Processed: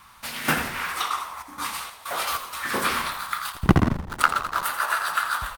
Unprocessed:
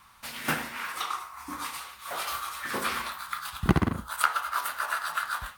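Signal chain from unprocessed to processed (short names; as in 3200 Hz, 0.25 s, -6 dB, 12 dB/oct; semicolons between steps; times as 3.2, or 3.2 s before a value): 1.08–2.69 step gate ".xx.xx.xx" 95 bpm -12 dB; 3.52–4.63 backlash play -25 dBFS; frequency-shifting echo 84 ms, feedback 51%, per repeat -81 Hz, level -10.5 dB; gain +5.5 dB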